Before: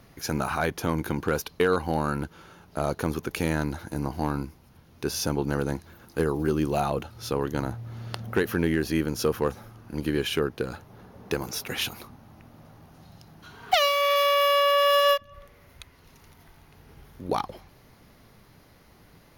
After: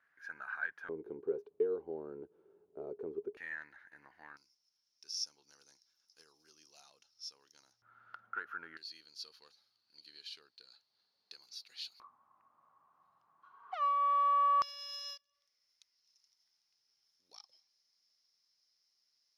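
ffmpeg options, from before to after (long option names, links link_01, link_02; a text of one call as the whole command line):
ffmpeg -i in.wav -af "asetnsamples=nb_out_samples=441:pad=0,asendcmd='0.89 bandpass f 410;3.37 bandpass f 1800;4.37 bandpass f 5400;7.82 bandpass f 1400;8.77 bandpass f 4400;12 bandpass f 1100;14.62 bandpass f 5300',bandpass=frequency=1600:width_type=q:width=14:csg=0" out.wav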